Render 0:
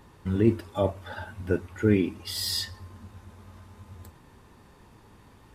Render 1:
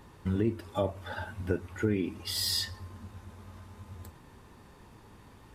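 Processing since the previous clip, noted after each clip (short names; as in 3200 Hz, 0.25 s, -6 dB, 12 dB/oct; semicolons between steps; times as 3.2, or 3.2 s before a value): compressor 4:1, threshold -25 dBFS, peak gain reduction 9.5 dB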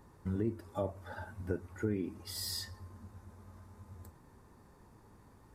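bell 3000 Hz -11.5 dB 0.97 oct; gain -5.5 dB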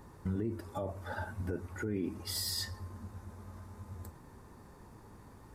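limiter -31.5 dBFS, peak gain reduction 11 dB; gain +5.5 dB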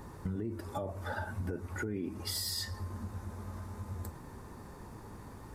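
compressor 3:1, threshold -41 dBFS, peak gain reduction 8.5 dB; gain +6 dB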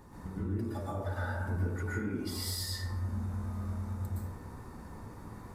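plate-style reverb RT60 0.96 s, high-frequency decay 0.45×, pre-delay 0.105 s, DRR -7 dB; gain -7 dB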